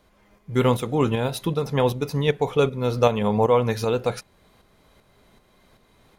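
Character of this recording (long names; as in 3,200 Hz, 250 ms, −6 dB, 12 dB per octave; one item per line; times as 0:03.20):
tremolo saw up 2.6 Hz, depth 50%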